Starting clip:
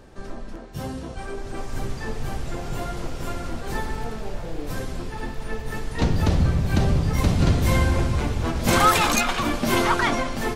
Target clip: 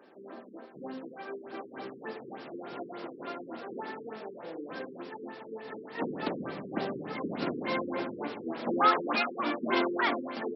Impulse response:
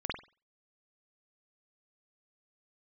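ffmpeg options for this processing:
-filter_complex "[0:a]highpass=f=250:w=0.5412,highpass=f=250:w=1.3066,asplit=2[a][b];[1:a]atrim=start_sample=2205[c];[b][c]afir=irnorm=-1:irlink=0,volume=-19.5dB[d];[a][d]amix=inputs=2:normalize=0,afftfilt=real='re*lt(b*sr/1024,460*pow(5700/460,0.5+0.5*sin(2*PI*3.4*pts/sr)))':imag='im*lt(b*sr/1024,460*pow(5700/460,0.5+0.5*sin(2*PI*3.4*pts/sr)))':win_size=1024:overlap=0.75,volume=-6dB"

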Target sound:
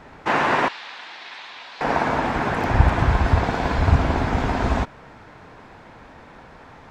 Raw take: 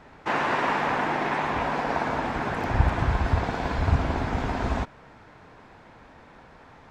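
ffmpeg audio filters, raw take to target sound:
-filter_complex "[0:a]asettb=1/sr,asplit=3[a][b][c];[a]atrim=end=0.684[d];[b]atrim=start=0.68:end=1.81,asetpts=PTS-STARTPTS,afade=t=in:d=0.004:c=qsin,afade=t=out:st=1.126:d=0.004:c=qsin,bandpass=f=4k:t=q:w=2.8:csg=0[e];[c]atrim=start=1.806[f];[d][e]acrossfade=d=0.004:c1=hsin:c2=qsin[g];[g][f]acrossfade=d=0.004:c1=qsin:c2=hsin,volume=5.5dB"

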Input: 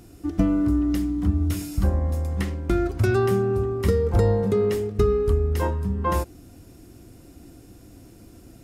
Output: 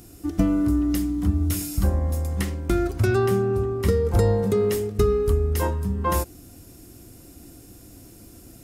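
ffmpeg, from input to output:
-af "asetnsamples=n=441:p=0,asendcmd='2.99 highshelf g 3.5;4.05 highshelf g 11.5',highshelf=f=6.1k:g=11"

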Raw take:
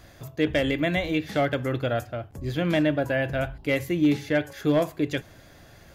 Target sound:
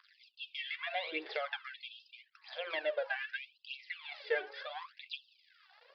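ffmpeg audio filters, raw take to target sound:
-af "bandreject=f=60:t=h:w=6,bandreject=f=120:t=h:w=6,bandreject=f=180:t=h:w=6,bandreject=f=240:t=h:w=6,bandreject=f=300:t=h:w=6,bandreject=f=360:t=h:w=6,bandreject=f=420:t=h:w=6,bandreject=f=480:t=h:w=6,bandreject=f=540:t=h:w=6,acompressor=threshold=-27dB:ratio=6,aeval=exprs='sgn(val(0))*max(abs(val(0))-0.00282,0)':c=same,aphaser=in_gain=1:out_gain=1:delay=2.7:decay=0.68:speed=0.79:type=triangular,aresample=11025,aresample=44100,afftfilt=real='re*gte(b*sr/1024,330*pow(2600/330,0.5+0.5*sin(2*PI*0.62*pts/sr)))':imag='im*gte(b*sr/1024,330*pow(2600/330,0.5+0.5*sin(2*PI*0.62*pts/sr)))':win_size=1024:overlap=0.75,volume=-3.5dB"

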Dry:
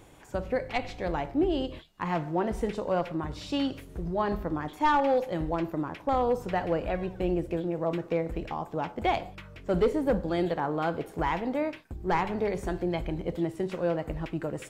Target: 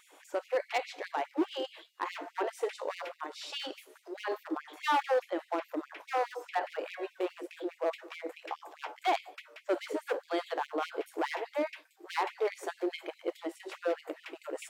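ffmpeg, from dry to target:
-filter_complex "[0:a]asettb=1/sr,asplit=3[a][b][c];[a]atrim=end=4.534[d];[b]atrim=start=4.53:end=6.79,asetpts=PTS-STARTPTS,afade=t=in:d=0.004:c=qsin,afade=t=out:st=2.256:d=0.004:c=qsin,acrossover=split=3100[e][f];[f]acompressor=threshold=-58dB:ratio=4:attack=1:release=60[g];[e][g]amix=inputs=2:normalize=0[h];[c]atrim=start=6.786[i];[d][h]acrossfade=d=0.004:c1=hsin:c2=qsin[j];[j][i]acrossfade=d=0.004:c1=qsin:c2=hsin,asoftclip=type=hard:threshold=-22.5dB,afftfilt=real='re*gte(b*sr/1024,260*pow(2100/260,0.5+0.5*sin(2*PI*4.8*pts/sr)))':imag='im*gte(b*sr/1024,260*pow(2100/260,0.5+0.5*sin(2*PI*4.8*pts/sr)))':win_size=1024:overlap=0.75"

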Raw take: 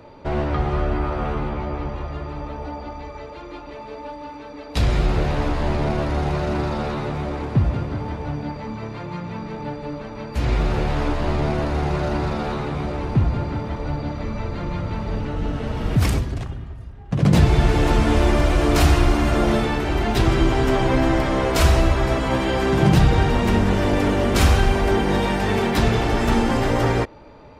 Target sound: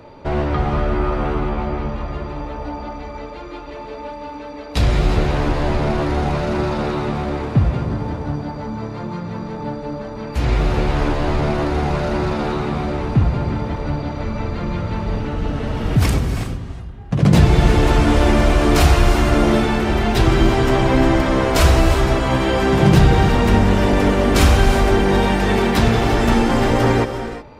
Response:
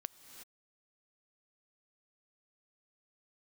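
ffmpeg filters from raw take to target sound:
-filter_complex "[0:a]asettb=1/sr,asplit=3[a][b][c];[a]atrim=end=7.844[d];[b]atrim=start=7.84:end=10.23,asetpts=PTS-STARTPTS,afade=t=in:d=0.004:c=qsin,afade=t=out:st=2.386:d=0.004:c=qsin,equalizer=f=2.5k:w=1.5:g=-6.5[e];[c]atrim=start=10.226[f];[d][e]acrossfade=d=0.004:c1=hsin:c2=qsin[g];[g][f]acrossfade=d=0.004:c1=qsin:c2=hsin[h];[1:a]atrim=start_sample=2205[i];[h][i]afir=irnorm=-1:irlink=0,volume=7dB"

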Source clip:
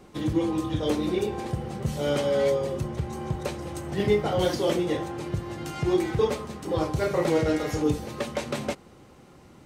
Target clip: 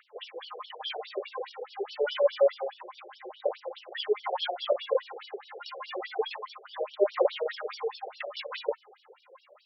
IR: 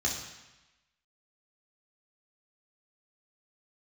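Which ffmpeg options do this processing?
-af "aphaser=in_gain=1:out_gain=1:delay=2.5:decay=0.69:speed=0.28:type=triangular,afftfilt=real='re*between(b*sr/1024,490*pow(4100/490,0.5+0.5*sin(2*PI*4.8*pts/sr))/1.41,490*pow(4100/490,0.5+0.5*sin(2*PI*4.8*pts/sr))*1.41)':imag='im*between(b*sr/1024,490*pow(4100/490,0.5+0.5*sin(2*PI*4.8*pts/sr))/1.41,490*pow(4100/490,0.5+0.5*sin(2*PI*4.8*pts/sr))*1.41)':win_size=1024:overlap=0.75,volume=1.5dB"

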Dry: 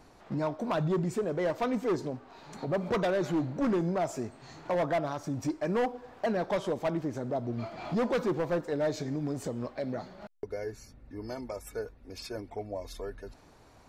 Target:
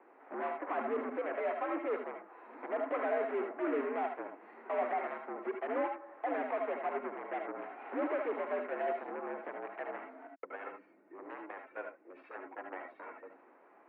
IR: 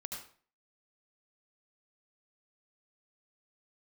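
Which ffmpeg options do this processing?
-filter_complex "[0:a]aeval=exprs='0.0668*(cos(1*acos(clip(val(0)/0.0668,-1,1)))-cos(1*PI/2))+0.015*(cos(3*acos(clip(val(0)/0.0668,-1,1)))-cos(3*PI/2))+0.015*(cos(7*acos(clip(val(0)/0.0668,-1,1)))-cos(7*PI/2))':c=same[a];[1:a]atrim=start_sample=2205,afade=t=out:st=0.13:d=0.01,atrim=end_sample=6174[b];[a][b]afir=irnorm=-1:irlink=0,highpass=f=210:t=q:w=0.5412,highpass=f=210:t=q:w=1.307,lowpass=f=2.2k:t=q:w=0.5176,lowpass=f=2.2k:t=q:w=0.7071,lowpass=f=2.2k:t=q:w=1.932,afreqshift=76"

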